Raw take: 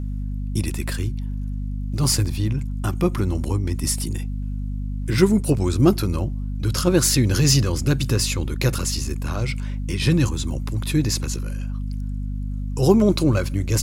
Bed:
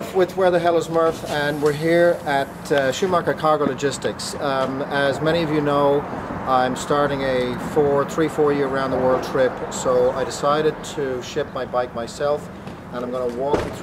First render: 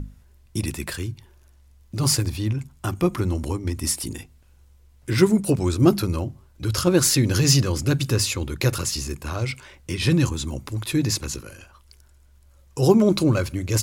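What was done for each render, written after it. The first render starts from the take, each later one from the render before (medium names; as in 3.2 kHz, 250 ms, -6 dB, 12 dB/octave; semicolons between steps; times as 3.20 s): hum notches 50/100/150/200/250 Hz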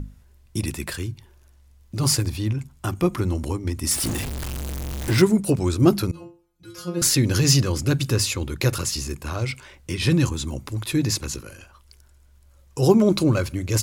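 3.91–5.22 s: jump at every zero crossing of -23.5 dBFS; 6.11–7.02 s: inharmonic resonator 170 Hz, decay 0.43 s, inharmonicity 0.002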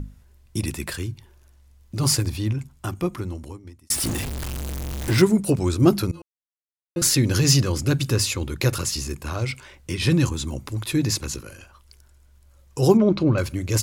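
2.53–3.90 s: fade out; 6.22–6.96 s: mute; 12.97–13.38 s: distance through air 240 m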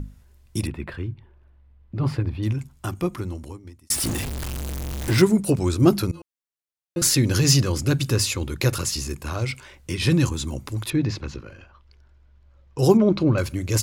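0.67–2.43 s: distance through air 480 m; 10.90–12.79 s: distance through air 230 m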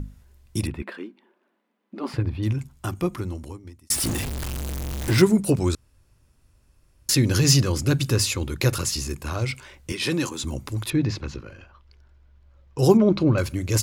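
0.82–2.14 s: brick-wall FIR high-pass 190 Hz; 5.75–7.09 s: room tone; 9.92–10.44 s: high-pass 280 Hz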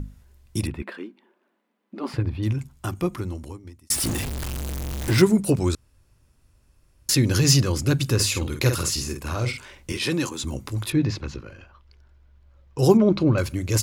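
8.15–9.99 s: doubling 49 ms -6 dB; 10.50–11.10 s: doubling 20 ms -13 dB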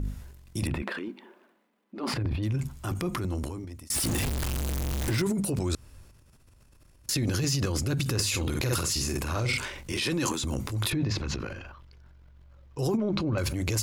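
compression 12:1, threshold -24 dBFS, peak gain reduction 15 dB; transient shaper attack -5 dB, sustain +10 dB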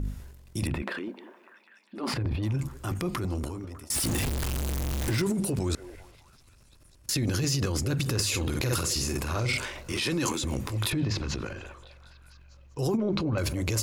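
repeats whose band climbs or falls 200 ms, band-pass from 450 Hz, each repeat 0.7 oct, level -11 dB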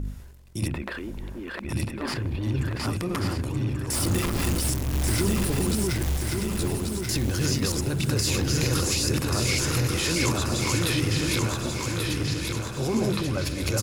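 backward echo that repeats 617 ms, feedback 42%, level -1 dB; feedback delay 1135 ms, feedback 49%, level -4.5 dB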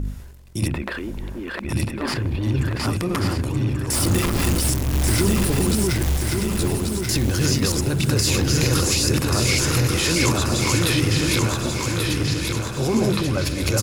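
trim +5 dB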